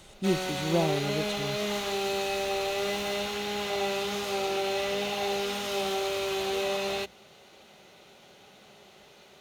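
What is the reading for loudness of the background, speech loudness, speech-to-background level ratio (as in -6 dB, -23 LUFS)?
-30.0 LUFS, -31.5 LUFS, -1.5 dB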